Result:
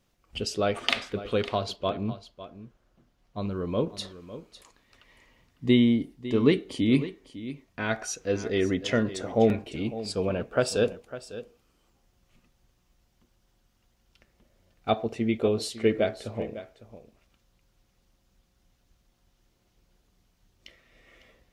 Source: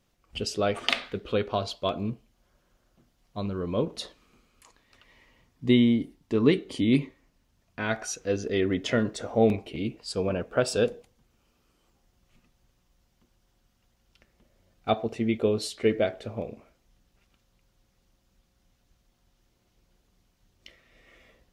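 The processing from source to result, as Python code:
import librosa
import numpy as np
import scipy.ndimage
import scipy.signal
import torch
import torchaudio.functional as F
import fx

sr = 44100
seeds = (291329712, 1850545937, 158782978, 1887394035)

p1 = fx.high_shelf(x, sr, hz=4900.0, db=-9.5, at=(1.76, 3.42))
y = p1 + fx.echo_single(p1, sr, ms=553, db=-14.5, dry=0)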